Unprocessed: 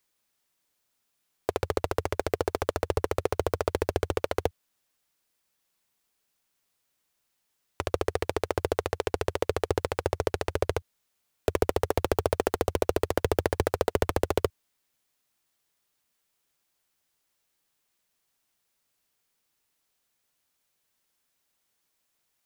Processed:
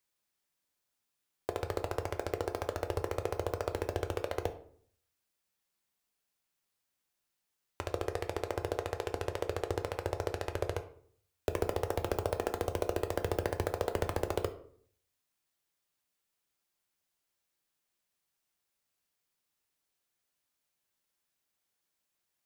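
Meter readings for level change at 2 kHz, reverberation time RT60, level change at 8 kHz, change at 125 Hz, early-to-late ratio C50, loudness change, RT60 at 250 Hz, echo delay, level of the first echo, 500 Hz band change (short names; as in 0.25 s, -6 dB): -6.5 dB, 0.55 s, -7.0 dB, -5.5 dB, 13.0 dB, -6.5 dB, 0.70 s, none, none, -7.0 dB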